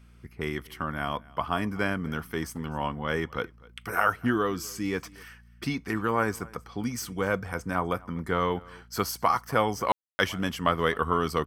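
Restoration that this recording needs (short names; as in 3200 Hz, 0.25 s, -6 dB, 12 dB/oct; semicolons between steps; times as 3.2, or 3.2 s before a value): de-hum 58.5 Hz, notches 4; room tone fill 9.92–10.19; inverse comb 0.253 s -23.5 dB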